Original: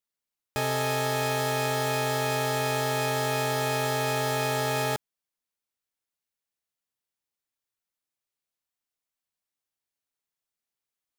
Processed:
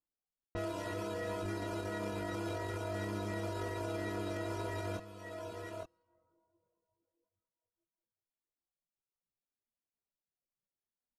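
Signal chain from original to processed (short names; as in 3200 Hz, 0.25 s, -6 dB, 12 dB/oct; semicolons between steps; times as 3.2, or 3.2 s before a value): Schroeder reverb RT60 3.2 s, combs from 32 ms, DRR 12.5 dB; low-pass opened by the level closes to 1300 Hz, open at -28.5 dBFS; reverb removal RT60 0.7 s; low shelf 380 Hz +4.5 dB; on a send: echo 0.864 s -7.5 dB; on the sum: pitch shift -4.5 st; reverb removal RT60 1.6 s; chorus voices 6, 0.2 Hz, delay 21 ms, depth 3.9 ms; limiter -29.5 dBFS, peak gain reduction 10 dB; high shelf 2300 Hz -8.5 dB; gain +1 dB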